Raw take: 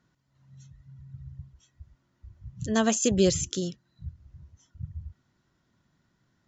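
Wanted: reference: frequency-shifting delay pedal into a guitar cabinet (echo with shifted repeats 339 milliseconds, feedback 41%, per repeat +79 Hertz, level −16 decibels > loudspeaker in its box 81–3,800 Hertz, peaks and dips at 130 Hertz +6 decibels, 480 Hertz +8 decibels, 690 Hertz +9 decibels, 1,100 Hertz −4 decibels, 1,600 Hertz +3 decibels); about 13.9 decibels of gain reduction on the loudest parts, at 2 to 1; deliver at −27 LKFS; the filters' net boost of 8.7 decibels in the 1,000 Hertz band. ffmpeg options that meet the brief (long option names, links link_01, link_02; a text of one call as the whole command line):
ffmpeg -i in.wav -filter_complex "[0:a]equalizer=frequency=1000:width_type=o:gain=3.5,acompressor=threshold=-44dB:ratio=2,asplit=5[link_01][link_02][link_03][link_04][link_05];[link_02]adelay=339,afreqshift=79,volume=-16dB[link_06];[link_03]adelay=678,afreqshift=158,volume=-23.7dB[link_07];[link_04]adelay=1017,afreqshift=237,volume=-31.5dB[link_08];[link_05]adelay=1356,afreqshift=316,volume=-39.2dB[link_09];[link_01][link_06][link_07][link_08][link_09]amix=inputs=5:normalize=0,highpass=81,equalizer=frequency=130:width_type=q:width=4:gain=6,equalizer=frequency=480:width_type=q:width=4:gain=8,equalizer=frequency=690:width_type=q:width=4:gain=9,equalizer=frequency=1100:width_type=q:width=4:gain=-4,equalizer=frequency=1600:width_type=q:width=4:gain=3,lowpass=frequency=3800:width=0.5412,lowpass=frequency=3800:width=1.3066,volume=12dB" out.wav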